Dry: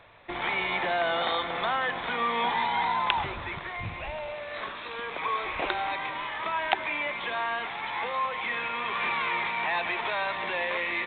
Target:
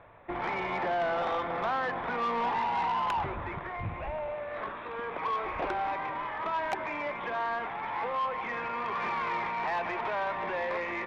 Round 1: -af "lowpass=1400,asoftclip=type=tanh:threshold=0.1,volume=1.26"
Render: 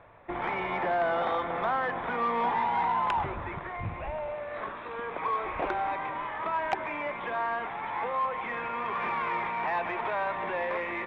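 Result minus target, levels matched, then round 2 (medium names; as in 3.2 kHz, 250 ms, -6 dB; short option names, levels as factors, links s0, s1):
saturation: distortion -7 dB
-af "lowpass=1400,asoftclip=type=tanh:threshold=0.0473,volume=1.26"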